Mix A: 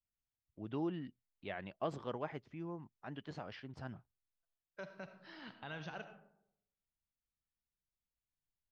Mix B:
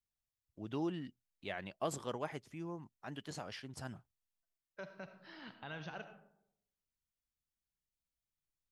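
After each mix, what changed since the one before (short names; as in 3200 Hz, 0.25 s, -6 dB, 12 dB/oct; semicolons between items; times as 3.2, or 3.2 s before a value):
first voice: remove air absorption 240 m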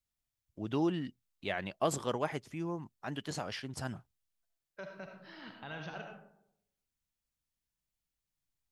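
first voice +6.5 dB; second voice: send +7.5 dB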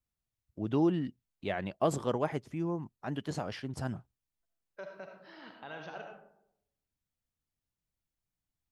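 second voice: add tone controls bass -14 dB, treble +2 dB; master: add tilt shelf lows +4.5 dB, about 1200 Hz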